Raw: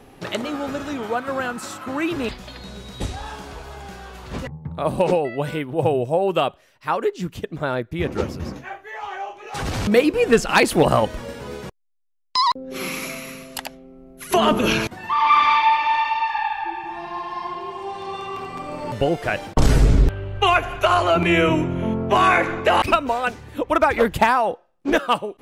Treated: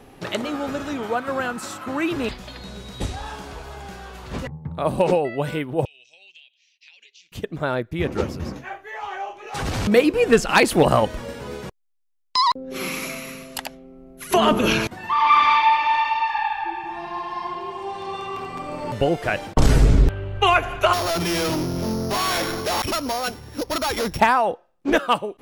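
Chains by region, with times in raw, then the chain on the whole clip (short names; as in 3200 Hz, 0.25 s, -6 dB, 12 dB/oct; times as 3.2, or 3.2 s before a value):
5.85–7.32 elliptic band-pass 2400–6400 Hz + compressor 8:1, threshold -45 dBFS
20.93–24.2 sample sorter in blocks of 8 samples + hard clip -21 dBFS
whole clip: dry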